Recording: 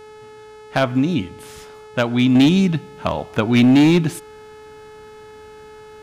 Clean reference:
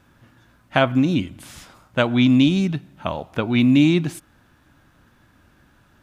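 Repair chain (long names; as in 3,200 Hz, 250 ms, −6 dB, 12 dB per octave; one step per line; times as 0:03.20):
clipped peaks rebuilt −8.5 dBFS
hum removal 429 Hz, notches 25
level correction −4.5 dB, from 0:02.35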